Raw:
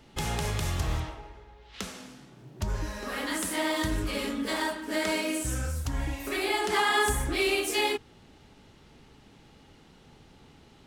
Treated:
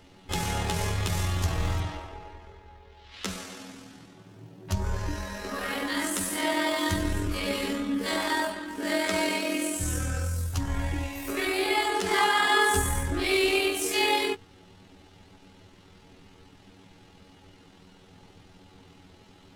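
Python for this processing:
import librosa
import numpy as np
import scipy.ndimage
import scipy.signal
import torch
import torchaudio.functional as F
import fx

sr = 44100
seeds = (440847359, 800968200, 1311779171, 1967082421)

y = fx.stretch_grains(x, sr, factor=1.8, grain_ms=48.0)
y = y * librosa.db_to_amplitude(3.0)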